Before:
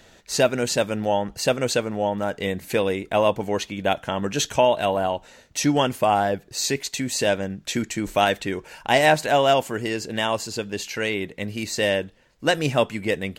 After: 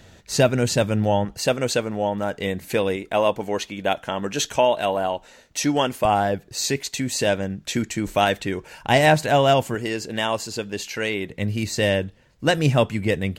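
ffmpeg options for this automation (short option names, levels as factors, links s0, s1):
-af "asetnsamples=n=441:p=0,asendcmd='1.25 equalizer g 1.5;2.96 equalizer g -4.5;6.05 equalizer g 4;8.83 equalizer g 11;9.75 equalizer g 0;11.3 equalizer g 10',equalizer=f=96:t=o:w=2:g=11.5"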